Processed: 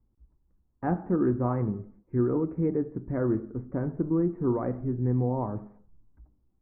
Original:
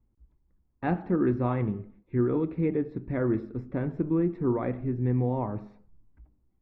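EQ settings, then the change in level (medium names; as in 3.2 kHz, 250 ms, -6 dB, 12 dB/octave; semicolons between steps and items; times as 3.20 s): low-pass 1.5 kHz 24 dB/octave; 0.0 dB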